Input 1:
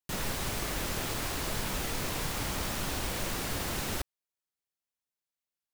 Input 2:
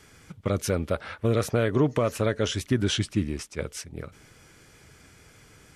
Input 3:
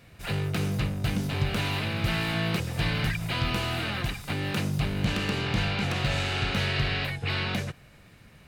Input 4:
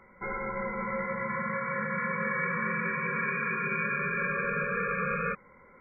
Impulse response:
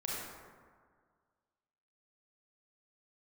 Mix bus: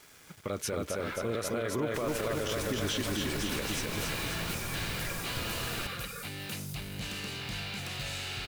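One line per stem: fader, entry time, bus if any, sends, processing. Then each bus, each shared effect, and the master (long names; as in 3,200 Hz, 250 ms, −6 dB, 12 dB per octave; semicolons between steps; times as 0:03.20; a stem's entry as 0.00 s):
−5.5 dB, 1.85 s, no send, no echo send, no processing
−1.5 dB, 0.00 s, no send, echo send −3.5 dB, low-shelf EQ 190 Hz −11.5 dB
+2.5 dB, 1.95 s, no send, no echo send, first-order pre-emphasis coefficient 0.8; soft clipping −32.5 dBFS, distortion −17 dB
−10.0 dB, 0.90 s, no send, no echo send, reverb reduction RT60 1.9 s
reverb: not used
echo: repeating echo 266 ms, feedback 54%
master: bit reduction 9 bits; brickwall limiter −22.5 dBFS, peak gain reduction 10.5 dB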